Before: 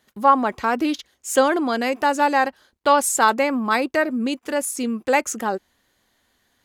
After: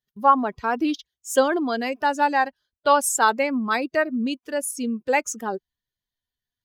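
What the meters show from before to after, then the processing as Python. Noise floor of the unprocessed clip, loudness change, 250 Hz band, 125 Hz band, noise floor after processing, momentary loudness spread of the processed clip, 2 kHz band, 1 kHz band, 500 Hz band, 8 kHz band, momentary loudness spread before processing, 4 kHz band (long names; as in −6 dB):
−68 dBFS, −2.0 dB, −2.5 dB, can't be measured, below −85 dBFS, 9 LU, −2.0 dB, −2.0 dB, −2.5 dB, −2.0 dB, 8 LU, −3.0 dB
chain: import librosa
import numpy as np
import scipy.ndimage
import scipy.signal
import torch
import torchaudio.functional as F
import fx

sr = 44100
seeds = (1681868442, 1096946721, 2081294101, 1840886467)

y = fx.bin_expand(x, sr, power=1.5)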